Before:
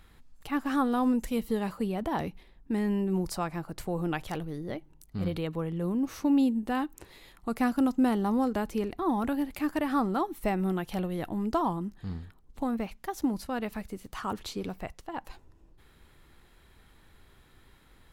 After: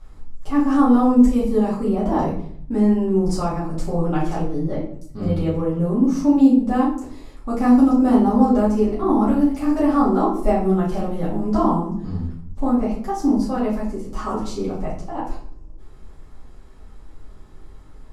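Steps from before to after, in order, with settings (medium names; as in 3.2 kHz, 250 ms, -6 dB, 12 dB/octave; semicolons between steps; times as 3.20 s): low-pass 7.4 kHz 12 dB/octave; high-order bell 2.5 kHz -10.5 dB; simulated room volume 79 m³, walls mixed, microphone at 2.3 m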